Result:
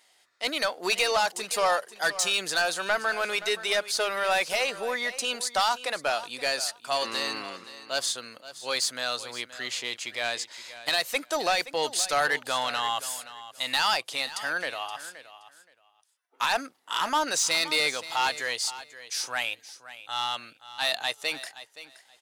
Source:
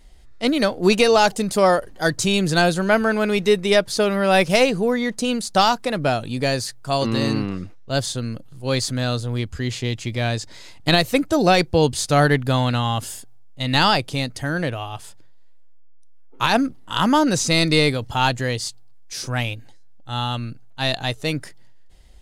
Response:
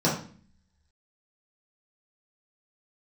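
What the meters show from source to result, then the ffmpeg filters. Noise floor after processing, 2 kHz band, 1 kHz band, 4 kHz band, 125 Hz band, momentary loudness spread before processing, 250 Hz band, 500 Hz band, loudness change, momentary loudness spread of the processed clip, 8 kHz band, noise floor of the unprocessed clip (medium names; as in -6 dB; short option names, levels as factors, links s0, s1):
-64 dBFS, -3.5 dB, -6.5 dB, -3.5 dB, -31.0 dB, 12 LU, -22.0 dB, -11.0 dB, -7.0 dB, 12 LU, -1.0 dB, -40 dBFS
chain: -filter_complex "[0:a]highpass=840,alimiter=limit=0.398:level=0:latency=1:release=263,asoftclip=type=tanh:threshold=0.141,asplit=2[s0][s1];[s1]aecho=0:1:523|1046:0.178|0.032[s2];[s0][s2]amix=inputs=2:normalize=0"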